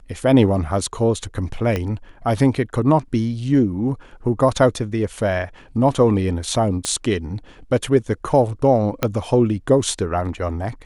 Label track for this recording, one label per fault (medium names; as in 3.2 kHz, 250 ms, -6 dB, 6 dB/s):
1.760000	1.760000	pop -10 dBFS
6.850000	6.850000	pop -9 dBFS
9.030000	9.030000	pop -4 dBFS